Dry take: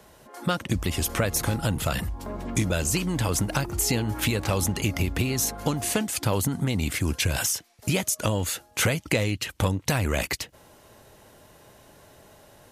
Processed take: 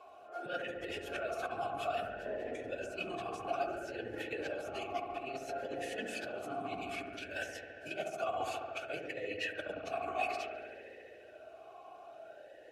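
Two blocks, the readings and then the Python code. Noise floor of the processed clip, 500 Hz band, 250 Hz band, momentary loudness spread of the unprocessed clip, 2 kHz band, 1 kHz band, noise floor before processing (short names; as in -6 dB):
-55 dBFS, -7.0 dB, -18.0 dB, 4 LU, -10.0 dB, -5.0 dB, -55 dBFS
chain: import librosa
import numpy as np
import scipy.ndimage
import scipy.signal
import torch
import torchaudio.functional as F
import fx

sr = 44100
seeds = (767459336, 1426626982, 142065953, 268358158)

y = fx.phase_scramble(x, sr, seeds[0], window_ms=50)
y = y + 0.5 * np.pad(y, (int(2.7 * sr / 1000.0), 0))[:len(y)]
y = fx.over_compress(y, sr, threshold_db=-28.0, ratio=-0.5)
y = fx.echo_wet_lowpass(y, sr, ms=70, feedback_pct=83, hz=1600.0, wet_db=-5.0)
y = fx.vowel_sweep(y, sr, vowels='a-e', hz=0.59)
y = y * librosa.db_to_amplitude(3.0)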